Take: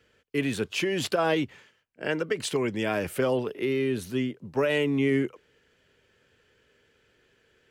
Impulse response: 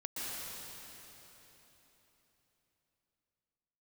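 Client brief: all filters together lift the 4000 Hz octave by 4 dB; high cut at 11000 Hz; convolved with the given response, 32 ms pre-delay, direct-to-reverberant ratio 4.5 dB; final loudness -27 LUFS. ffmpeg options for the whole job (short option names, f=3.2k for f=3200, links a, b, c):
-filter_complex "[0:a]lowpass=11k,equalizer=f=4k:t=o:g=5.5,asplit=2[a][b];[1:a]atrim=start_sample=2205,adelay=32[c];[b][c]afir=irnorm=-1:irlink=0,volume=-7.5dB[d];[a][d]amix=inputs=2:normalize=0,volume=-0.5dB"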